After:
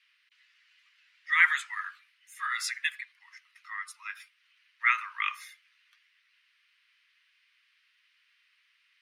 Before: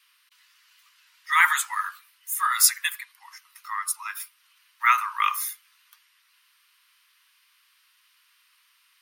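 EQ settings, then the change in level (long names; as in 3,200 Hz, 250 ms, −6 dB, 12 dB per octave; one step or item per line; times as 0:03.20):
four-pole ladder band-pass 2,400 Hz, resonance 40%
+6.0 dB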